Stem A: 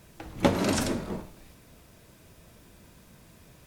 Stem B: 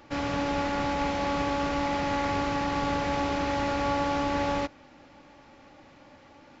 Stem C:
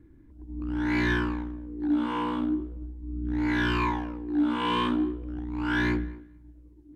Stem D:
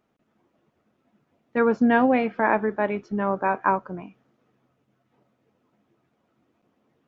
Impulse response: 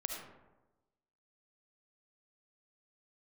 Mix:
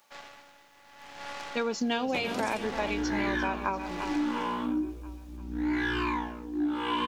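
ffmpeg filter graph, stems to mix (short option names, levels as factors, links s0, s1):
-filter_complex "[0:a]adelay=1700,volume=0.376[s0];[1:a]highpass=f=600:w=0.5412,highpass=f=600:w=1.3066,aeval=exprs='0.112*(cos(1*acos(clip(val(0)/0.112,-1,1)))-cos(1*PI/2))+0.0562*(cos(6*acos(clip(val(0)/0.112,-1,1)))-cos(6*PI/2))+0.0224*(cos(8*acos(clip(val(0)/0.112,-1,1)))-cos(8*PI/2))':c=same,aeval=exprs='val(0)*pow(10,-20*(0.5-0.5*cos(2*PI*0.72*n/s))/20)':c=same,volume=0.316[s1];[2:a]flanger=delay=19:depth=2.5:speed=1.1,adelay=2250,volume=1.33[s2];[3:a]aexciter=amount=7.5:drive=9.3:freq=2800,volume=0.531,asplit=2[s3][s4];[s4]volume=0.266,aecho=0:1:344|688|1032|1376|1720|2064|2408|2752:1|0.53|0.281|0.149|0.0789|0.0418|0.0222|0.0117[s5];[s0][s1][s2][s3][s5]amix=inputs=5:normalize=0,lowshelf=f=190:g=-6.5,acompressor=threshold=0.0562:ratio=6"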